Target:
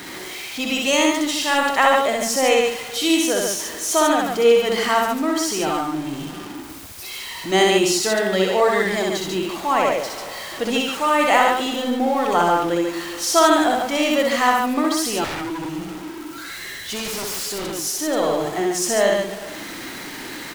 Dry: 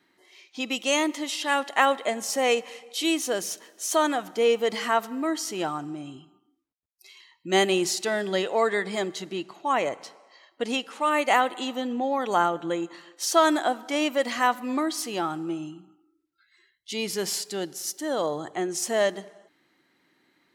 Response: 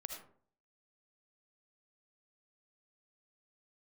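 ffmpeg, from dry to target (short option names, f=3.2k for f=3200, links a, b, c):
-filter_complex "[0:a]aeval=exprs='val(0)+0.5*0.0224*sgn(val(0))':c=same,aecho=1:1:64.14|142.9:0.794|0.631,asettb=1/sr,asplit=3[a][b][c];[a]atrim=end=15.244[d];[b]atrim=start=15.24:end=17.79,asetpts=PTS-STARTPTS,afade=t=in:d=0.004:c=qsin,afade=t=out:st=2.546:d=0.004:c=qsin,aeval=exprs='0.0562*(abs(mod(val(0)/0.0562+3,4)-2)-1)':c=same[e];[c]atrim=start=17.786[f];[d][e]acrossfade=d=0.004:c1=hsin:c2=qsin[g];[g][f]acrossfade=d=0.004:c1=qsin:c2=hsin,volume=2.5dB"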